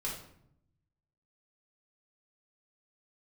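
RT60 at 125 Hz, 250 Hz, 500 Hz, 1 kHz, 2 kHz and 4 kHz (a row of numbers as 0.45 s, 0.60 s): 1.4 s, 1.1 s, 0.80 s, 0.65 s, 0.60 s, 0.45 s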